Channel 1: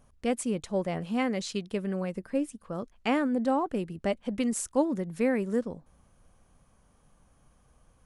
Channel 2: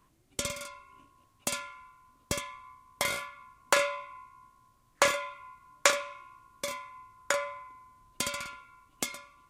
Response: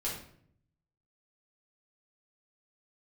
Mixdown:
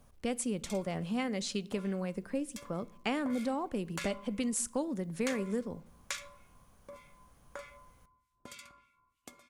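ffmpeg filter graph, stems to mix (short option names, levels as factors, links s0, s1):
-filter_complex "[0:a]acrossover=split=120|3000[s0][s1][s2];[s1]acompressor=threshold=0.0224:ratio=3[s3];[s0][s3][s2]amix=inputs=3:normalize=0,acrusher=bits=11:mix=0:aa=0.000001,volume=0.944,asplit=2[s4][s5];[s5]volume=0.0891[s6];[1:a]acrossover=split=1400[s7][s8];[s7]aeval=exprs='val(0)*(1-1/2+1/2*cos(2*PI*3.3*n/s))':c=same[s9];[s8]aeval=exprs='val(0)*(1-1/2-1/2*cos(2*PI*3.3*n/s))':c=same[s10];[s9][s10]amix=inputs=2:normalize=0,adelay=250,volume=0.251,asplit=2[s11][s12];[s12]volume=0.168[s13];[2:a]atrim=start_sample=2205[s14];[s6][s13]amix=inputs=2:normalize=0[s15];[s15][s14]afir=irnorm=-1:irlink=0[s16];[s4][s11][s16]amix=inputs=3:normalize=0"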